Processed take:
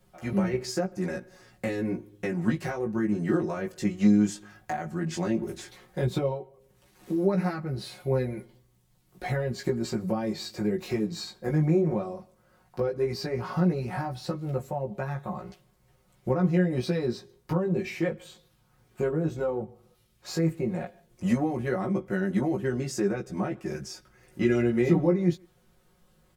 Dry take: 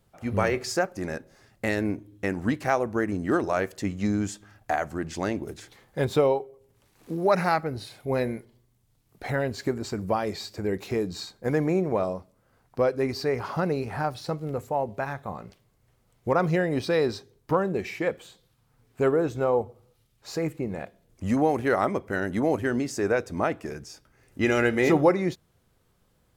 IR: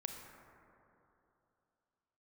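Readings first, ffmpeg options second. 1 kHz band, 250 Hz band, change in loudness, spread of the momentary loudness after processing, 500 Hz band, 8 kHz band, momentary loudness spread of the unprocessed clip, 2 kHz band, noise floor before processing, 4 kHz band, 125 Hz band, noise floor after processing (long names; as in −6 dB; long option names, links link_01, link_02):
−8.0 dB, +1.5 dB, −1.5 dB, 14 LU, −4.0 dB, −1.5 dB, 13 LU, −7.0 dB, −67 dBFS, −2.0 dB, +2.5 dB, −65 dBFS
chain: -filter_complex "[0:a]acrossover=split=320[link_01][link_02];[link_02]acompressor=threshold=-36dB:ratio=5[link_03];[link_01][link_03]amix=inputs=2:normalize=0,asplit=2[link_04][link_05];[link_05]adelay=150,highpass=300,lowpass=3400,asoftclip=type=hard:threshold=-25dB,volume=-26dB[link_06];[link_04][link_06]amix=inputs=2:normalize=0,flanger=delay=15:depth=4.1:speed=0.13,aecho=1:1:5.5:0.77,volume=4dB"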